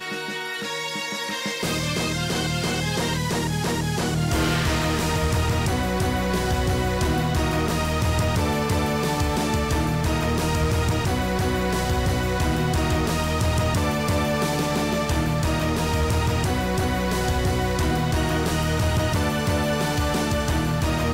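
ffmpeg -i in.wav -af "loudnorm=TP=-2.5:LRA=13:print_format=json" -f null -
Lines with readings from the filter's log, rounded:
"input_i" : "-23.3",
"input_tp" : "-15.5",
"input_lra" : "0.6",
"input_thresh" : "-33.3",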